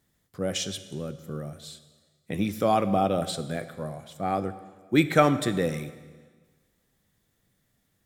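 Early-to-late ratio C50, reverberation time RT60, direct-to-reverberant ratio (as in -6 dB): 13.5 dB, 1.4 s, 11.5 dB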